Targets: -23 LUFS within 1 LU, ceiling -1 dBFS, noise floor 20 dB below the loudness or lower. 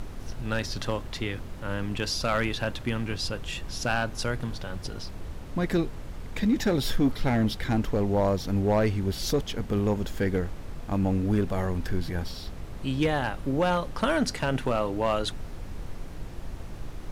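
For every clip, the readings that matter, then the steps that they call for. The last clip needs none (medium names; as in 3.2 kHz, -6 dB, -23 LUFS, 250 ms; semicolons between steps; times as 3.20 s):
clipped samples 0.6%; clipping level -16.5 dBFS; noise floor -39 dBFS; noise floor target -49 dBFS; loudness -28.5 LUFS; peak level -16.5 dBFS; loudness target -23.0 LUFS
-> clip repair -16.5 dBFS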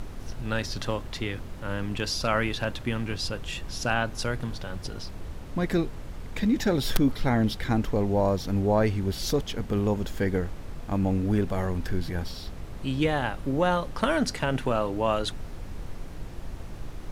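clipped samples 0.0%; noise floor -39 dBFS; noise floor target -48 dBFS
-> noise print and reduce 9 dB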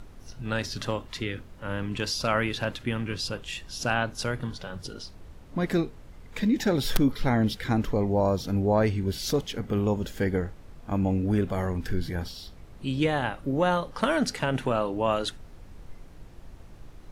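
noise floor -48 dBFS; loudness -28.0 LUFS; peak level -7.5 dBFS; loudness target -23.0 LUFS
-> trim +5 dB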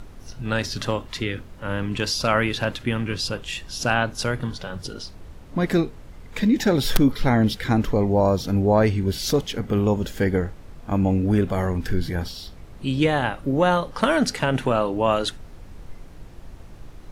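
loudness -23.0 LUFS; peak level -2.5 dBFS; noise floor -43 dBFS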